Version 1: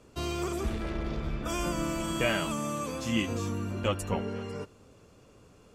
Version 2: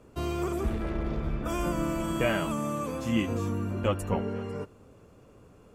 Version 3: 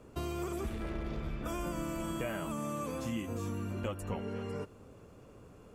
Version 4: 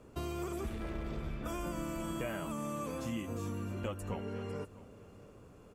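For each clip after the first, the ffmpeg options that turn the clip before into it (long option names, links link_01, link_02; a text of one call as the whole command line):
ffmpeg -i in.wav -af "equalizer=frequency=5000:width_type=o:width=2.1:gain=-9.5,volume=2.5dB" out.wav
ffmpeg -i in.wav -filter_complex "[0:a]acrossover=split=2000|7400[link_01][link_02][link_03];[link_01]acompressor=threshold=-35dB:ratio=4[link_04];[link_02]acompressor=threshold=-52dB:ratio=4[link_05];[link_03]acompressor=threshold=-53dB:ratio=4[link_06];[link_04][link_05][link_06]amix=inputs=3:normalize=0" out.wav
ffmpeg -i in.wav -af "aecho=1:1:654:0.112,volume=-1.5dB" out.wav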